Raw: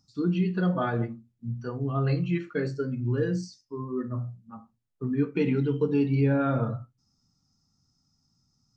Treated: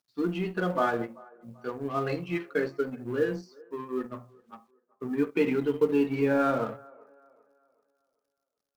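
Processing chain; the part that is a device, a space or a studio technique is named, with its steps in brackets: phone line with mismatched companding (BPF 330–3400 Hz; G.711 law mismatch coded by A); band-limited delay 0.387 s, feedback 36%, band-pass 740 Hz, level -23 dB; gain +4.5 dB

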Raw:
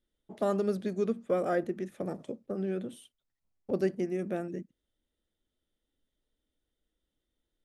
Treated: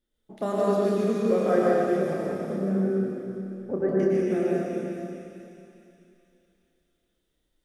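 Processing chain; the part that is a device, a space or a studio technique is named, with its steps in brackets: 2.18–3.89 steep low-pass 1800 Hz 36 dB/oct; tunnel (flutter echo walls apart 5.3 m, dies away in 0.25 s; reverb RT60 2.6 s, pre-delay 0.1 s, DRR -5.5 dB); thin delay 0.426 s, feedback 45%, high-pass 2600 Hz, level -5 dB

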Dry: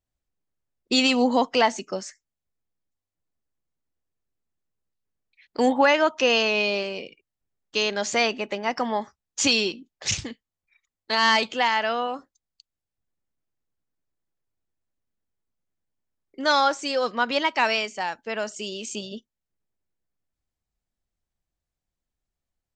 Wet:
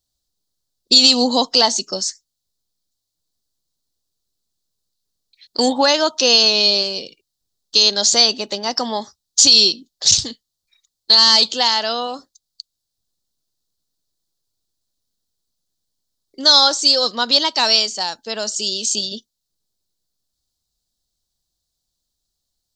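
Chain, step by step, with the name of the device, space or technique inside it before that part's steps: over-bright horn tweeter (resonant high shelf 3100 Hz +10.5 dB, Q 3; limiter -4 dBFS, peak gain reduction 8.5 dB); gain +3 dB

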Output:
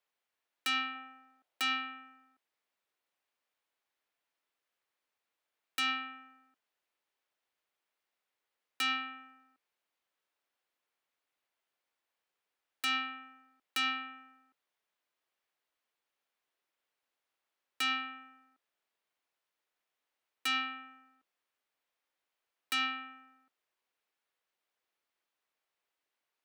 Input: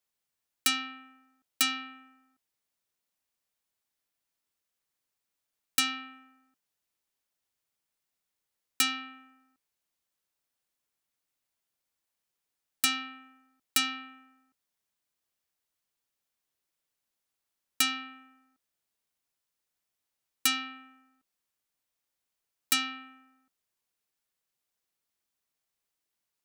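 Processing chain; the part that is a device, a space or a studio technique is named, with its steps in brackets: 0.95–1.64 bell 670 Hz +7 dB 0.72 oct; DJ mixer with the lows and highs turned down (three-band isolator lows -15 dB, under 310 Hz, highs -13 dB, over 3600 Hz; limiter -26 dBFS, peak gain reduction 9.5 dB); gain +4 dB

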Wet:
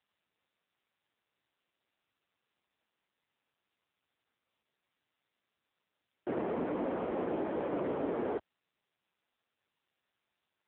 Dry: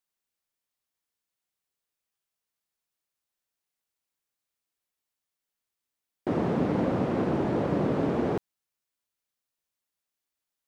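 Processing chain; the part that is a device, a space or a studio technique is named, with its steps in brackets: telephone (BPF 320–3100 Hz; soft clip -22 dBFS, distortion -20 dB; gain -2 dB; AMR-NB 6.7 kbps 8000 Hz)

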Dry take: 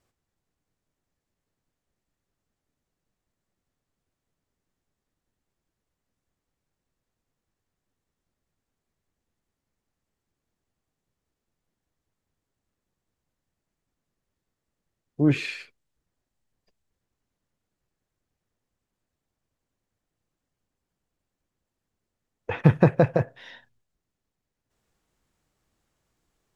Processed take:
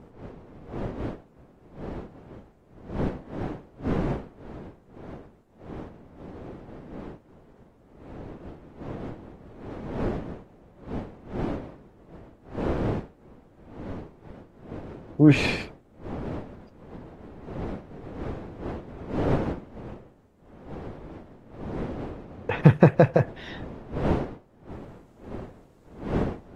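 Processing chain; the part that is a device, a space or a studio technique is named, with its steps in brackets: smartphone video outdoors (wind noise 390 Hz -40 dBFS; AGC gain up to 5.5 dB; AAC 48 kbps 48000 Hz)

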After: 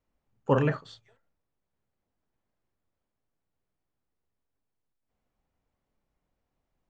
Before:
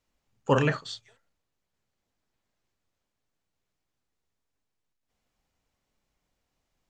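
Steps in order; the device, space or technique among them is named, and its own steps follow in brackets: through cloth (high shelf 2600 Hz -16 dB)

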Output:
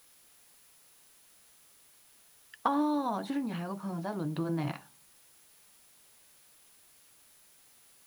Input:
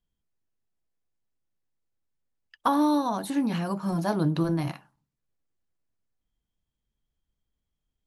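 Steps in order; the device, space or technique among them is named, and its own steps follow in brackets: medium wave at night (BPF 130–3800 Hz; compressor, threshold -28 dBFS, peak gain reduction 9 dB; tremolo 0.39 Hz, depth 59%; whine 10000 Hz -67 dBFS; white noise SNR 24 dB); gain +2.5 dB

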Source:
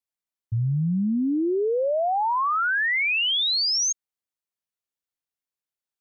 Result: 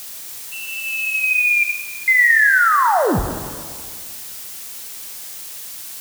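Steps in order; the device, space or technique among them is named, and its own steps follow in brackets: 1.63–2.08 steep high-pass 2200 Hz; scrambled radio voice (BPF 380–2800 Hz; inverted band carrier 2800 Hz; white noise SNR 20 dB); high shelf 3300 Hz +10.5 dB; plate-style reverb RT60 1.9 s, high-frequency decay 0.85×, DRR 6 dB; gain +7 dB

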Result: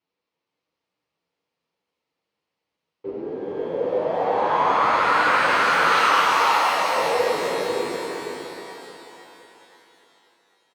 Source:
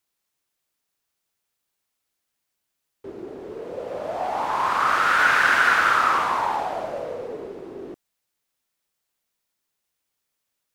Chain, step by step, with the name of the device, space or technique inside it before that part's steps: barber-pole flanger into a guitar amplifier (endless flanger 8.8 ms +2.4 Hz; soft clip -16 dBFS, distortion -17 dB; speaker cabinet 75–4200 Hz, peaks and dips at 170 Hz +6 dB, 290 Hz +5 dB, 490 Hz +9 dB, 930 Hz +3 dB, 1600 Hz -7 dB, 3500 Hz -5 dB); 5.92–6.96 tilt +4.5 dB/oct; echo 0.496 s -5.5 dB; shimmer reverb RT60 3.5 s, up +12 st, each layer -8 dB, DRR 2.5 dB; gain +3.5 dB

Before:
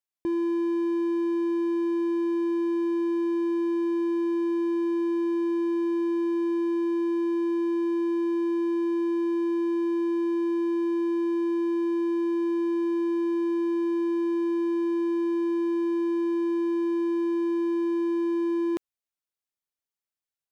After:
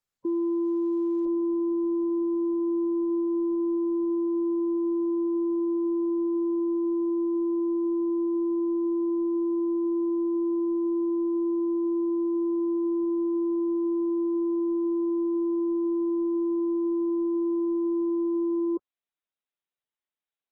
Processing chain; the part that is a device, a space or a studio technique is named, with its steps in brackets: noise-suppressed video call (HPF 160 Hz 12 dB/oct; spectral gate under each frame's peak -20 dB strong; Opus 16 kbps 48000 Hz)

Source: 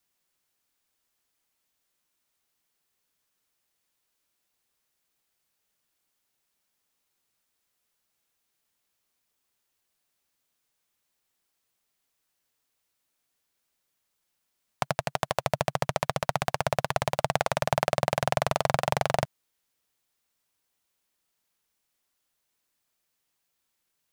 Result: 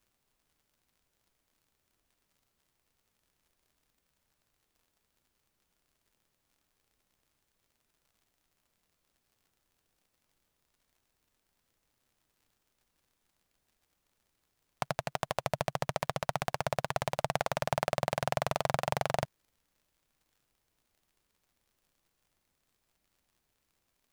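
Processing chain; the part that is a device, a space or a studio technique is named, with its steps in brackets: record under a worn stylus (tracing distortion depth 0.025 ms; crackle; pink noise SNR 41 dB); gain -5.5 dB

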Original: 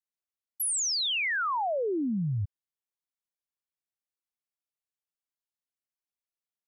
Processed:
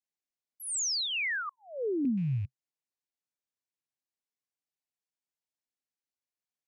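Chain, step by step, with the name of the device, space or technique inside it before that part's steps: 1.49–2.05 elliptic band-stop 470–5800 Hz, stop band 40 dB; car door speaker with a rattle (rattling part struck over -34 dBFS, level -45 dBFS; speaker cabinet 96–8600 Hz, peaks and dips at 130 Hz +3 dB, 260 Hz +4 dB, 1300 Hz -7 dB, 3300 Hz -4 dB); gain -1.5 dB

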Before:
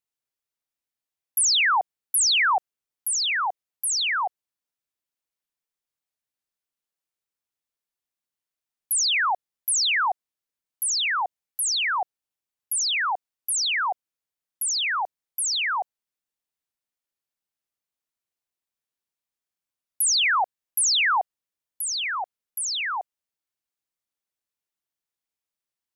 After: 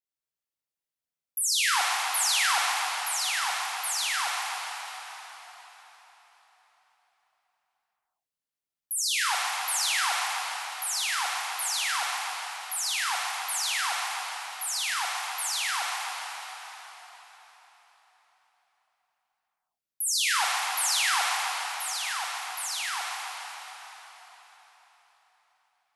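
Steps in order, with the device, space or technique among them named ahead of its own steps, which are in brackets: cathedral (reverb RT60 4.7 s, pre-delay 3 ms, DRR -4 dB); gain -8.5 dB

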